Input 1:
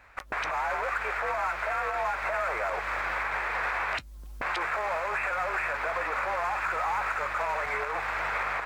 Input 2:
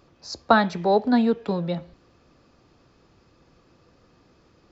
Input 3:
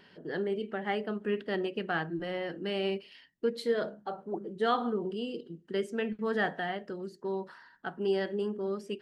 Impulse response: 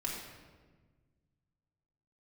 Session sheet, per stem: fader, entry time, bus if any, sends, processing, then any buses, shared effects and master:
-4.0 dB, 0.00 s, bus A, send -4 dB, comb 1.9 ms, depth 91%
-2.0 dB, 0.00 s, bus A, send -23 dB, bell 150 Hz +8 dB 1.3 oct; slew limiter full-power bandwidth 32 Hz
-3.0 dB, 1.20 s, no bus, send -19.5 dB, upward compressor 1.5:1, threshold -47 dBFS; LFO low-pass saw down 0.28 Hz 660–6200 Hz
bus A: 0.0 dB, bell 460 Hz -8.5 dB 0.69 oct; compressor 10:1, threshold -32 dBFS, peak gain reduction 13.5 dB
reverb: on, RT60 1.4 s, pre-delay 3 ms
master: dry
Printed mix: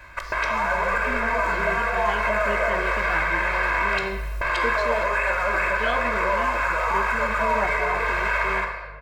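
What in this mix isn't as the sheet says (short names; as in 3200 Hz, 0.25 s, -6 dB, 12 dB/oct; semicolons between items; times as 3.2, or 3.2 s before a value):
stem 1 -4.0 dB -> +4.5 dB; stem 2: missing bell 150 Hz +8 dB 1.3 oct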